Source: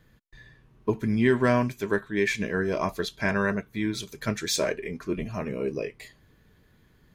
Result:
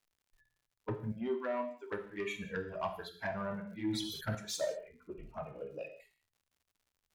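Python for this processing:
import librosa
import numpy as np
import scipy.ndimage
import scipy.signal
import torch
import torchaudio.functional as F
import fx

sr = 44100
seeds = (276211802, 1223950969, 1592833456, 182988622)

y = fx.bin_expand(x, sr, power=2.0)
y = fx.band_shelf(y, sr, hz=930.0, db=10.0, octaves=1.7)
y = fx.rider(y, sr, range_db=5, speed_s=0.5)
y = fx.env_flanger(y, sr, rest_ms=10.5, full_db=-22.0)
y = 10.0 ** (-20.0 / 20.0) * np.tanh(y / 10.0 ** (-20.0 / 20.0))
y = fx.brickwall_bandpass(y, sr, low_hz=230.0, high_hz=7800.0, at=(1.12, 1.92))
y = fx.rev_gated(y, sr, seeds[0], gate_ms=220, shape='falling', drr_db=4.5)
y = fx.dmg_crackle(y, sr, seeds[1], per_s=130.0, level_db=-54.0)
y = fx.sustainer(y, sr, db_per_s=44.0, at=(3.44, 4.35))
y = F.gain(torch.from_numpy(y), -8.0).numpy()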